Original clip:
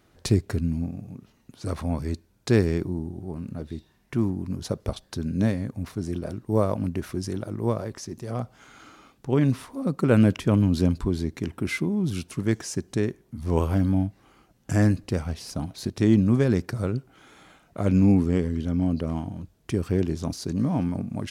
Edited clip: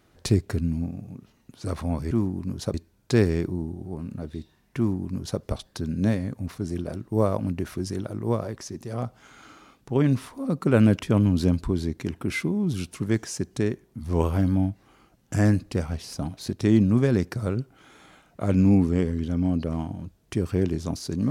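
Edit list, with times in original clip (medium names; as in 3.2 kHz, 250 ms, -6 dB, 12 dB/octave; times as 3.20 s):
4.14–4.77 s: copy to 2.11 s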